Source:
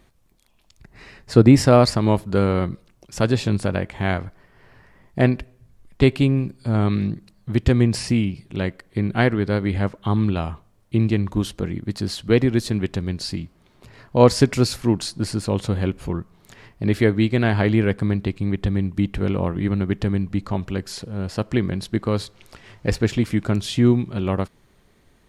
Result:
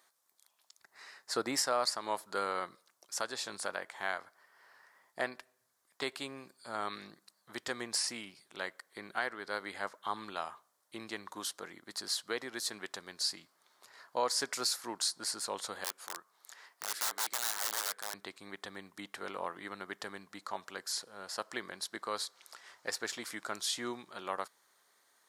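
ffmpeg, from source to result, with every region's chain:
-filter_complex "[0:a]asettb=1/sr,asplit=3[s0][s1][s2];[s0]atrim=end=15.844[s3];[s1]atrim=start=15.84:end=18.14,asetpts=PTS-STARTPTS,afade=t=in:d=0.004:c=qsin,afade=t=out:st=2.296:d=0.004:c=qsin,highpass=f=430:p=1,aeval=exprs='(mod(11.9*val(0)+1,2)-1)/11.9':c=same[s4];[s2]atrim=start=18.136[s5];[s3][s4]acrossfade=d=0.004:c1=hsin:c2=qsin[s6];[s6][s5]acrossfade=d=0.004:c1=qsin:c2=hsin,highpass=1200,equalizer=f=2600:w=1.6:g=-13,alimiter=limit=0.106:level=0:latency=1:release=395"

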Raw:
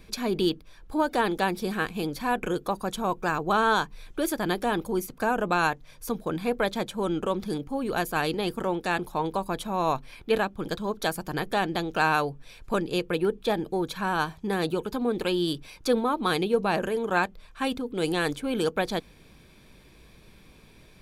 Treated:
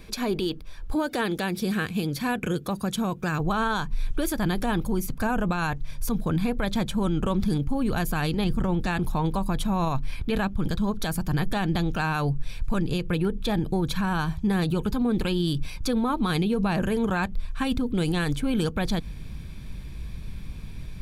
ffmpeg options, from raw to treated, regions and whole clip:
-filter_complex "[0:a]asettb=1/sr,asplit=3[s0][s1][s2];[s0]atrim=end=0.954[s3];[s1]atrim=start=0.95:end=3.4,asetpts=PTS-STARTPTS,afade=t=in:d=0.004:c=qsin,afade=t=out:st=2.446:d=0.004:c=qsin,highpass=110,equalizer=f=910:t=o:w=1:g=-7[s4];[s2]atrim=start=3.396[s5];[s3][s4]acrossfade=d=0.004:c1=hsin:c2=qsin[s6];[s6][s5]acrossfade=d=0.004:c1=qsin:c2=hsin,asettb=1/sr,asplit=3[s7][s8][s9];[s7]atrim=end=8.444[s10];[s8]atrim=start=8.44:end=8.87,asetpts=PTS-STARTPTS,afade=t=in:d=0.004:c=qsin,afade=t=out:st=0.426:d=0.004:c=qsin,acrossover=split=8400[s11][s12];[s12]acompressor=threshold=0.00112:ratio=4:attack=1:release=60[s13];[s11][s13]amix=inputs=2:normalize=0,lowshelf=f=190:g=8[s14];[s9]atrim=start=8.866[s15];[s10][s14]acrossfade=d=0.004:c1=hsin:c2=qsin[s16];[s16][s15]acrossfade=d=0.004:c1=qsin:c2=hsin,asubboost=boost=6.5:cutoff=160,alimiter=limit=0.0794:level=0:latency=1:release=109,volume=1.78"

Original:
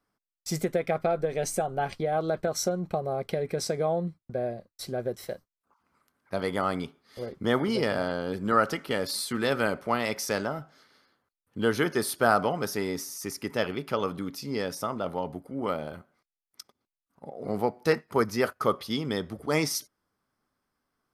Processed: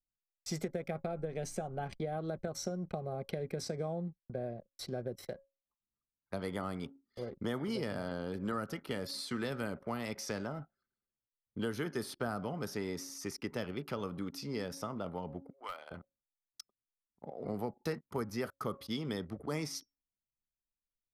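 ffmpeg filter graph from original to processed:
-filter_complex "[0:a]asettb=1/sr,asplit=3[s0][s1][s2];[s0]atrim=end=15.504[s3];[s1]atrim=start=15.5:end=15.91,asetpts=PTS-STARTPTS,afade=t=in:d=0.004:c=qsin,afade=t=out:st=0.406:d=0.004:c=qsin,highpass=1200,aeval=exprs='clip(val(0),-1,0.0316)':c=same[s4];[s2]atrim=start=15.906[s5];[s3][s4]acrossfade=d=0.004:c1=hsin:c2=qsin[s6];[s6][s5]acrossfade=d=0.004:c1=qsin:c2=hsin,acrossover=split=280|7000[s7][s8][s9];[s7]acompressor=threshold=0.02:ratio=4[s10];[s8]acompressor=threshold=0.0178:ratio=4[s11];[s9]acompressor=threshold=0.00224:ratio=4[s12];[s10][s11][s12]amix=inputs=3:normalize=0,bandreject=f=274.6:t=h:w=4,bandreject=f=549.2:t=h:w=4,bandreject=f=823.8:t=h:w=4,bandreject=f=1098.4:t=h:w=4,bandreject=f=1373:t=h:w=4,bandreject=f=1647.6:t=h:w=4,bandreject=f=1922.2:t=h:w=4,bandreject=f=2196.8:t=h:w=4,bandreject=f=2471.4:t=h:w=4,bandreject=f=2746:t=h:w=4,bandreject=f=3020.6:t=h:w=4,bandreject=f=3295.2:t=h:w=4,bandreject=f=3569.8:t=h:w=4,bandreject=f=3844.4:t=h:w=4,bandreject=f=4119:t=h:w=4,bandreject=f=4393.6:t=h:w=4,bandreject=f=4668.2:t=h:w=4,bandreject=f=4942.8:t=h:w=4,bandreject=f=5217.4:t=h:w=4,bandreject=f=5492:t=h:w=4,bandreject=f=5766.6:t=h:w=4,bandreject=f=6041.2:t=h:w=4,bandreject=f=6315.8:t=h:w=4,bandreject=f=6590.4:t=h:w=4,bandreject=f=6865:t=h:w=4,bandreject=f=7139.6:t=h:w=4,bandreject=f=7414.2:t=h:w=4,bandreject=f=7688.8:t=h:w=4,bandreject=f=7963.4:t=h:w=4,bandreject=f=8238:t=h:w=4,bandreject=f=8512.6:t=h:w=4,bandreject=f=8787.2:t=h:w=4,bandreject=f=9061.8:t=h:w=4,bandreject=f=9336.4:t=h:w=4,bandreject=f=9611:t=h:w=4,bandreject=f=9885.6:t=h:w=4,bandreject=f=10160.2:t=h:w=4,anlmdn=0.01,volume=0.668"

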